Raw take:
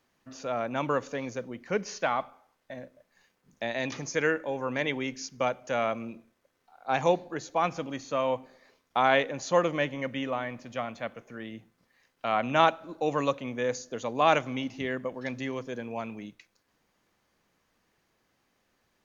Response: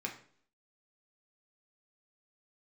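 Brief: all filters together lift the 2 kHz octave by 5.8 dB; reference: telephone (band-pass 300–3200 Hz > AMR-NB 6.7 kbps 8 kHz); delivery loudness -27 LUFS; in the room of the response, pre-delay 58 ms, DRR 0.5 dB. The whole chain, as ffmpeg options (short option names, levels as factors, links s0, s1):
-filter_complex "[0:a]equalizer=f=2000:t=o:g=8,asplit=2[s0][s1];[1:a]atrim=start_sample=2205,adelay=58[s2];[s1][s2]afir=irnorm=-1:irlink=0,volume=0.794[s3];[s0][s3]amix=inputs=2:normalize=0,highpass=300,lowpass=3200,volume=1.06" -ar 8000 -c:a libopencore_amrnb -b:a 6700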